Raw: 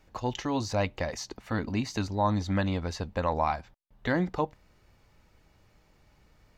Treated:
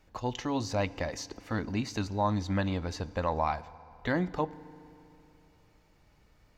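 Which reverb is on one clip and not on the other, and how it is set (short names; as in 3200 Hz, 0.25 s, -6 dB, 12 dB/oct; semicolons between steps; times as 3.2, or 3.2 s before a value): FDN reverb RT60 3 s, high-frequency decay 0.8×, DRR 18 dB; gain -2 dB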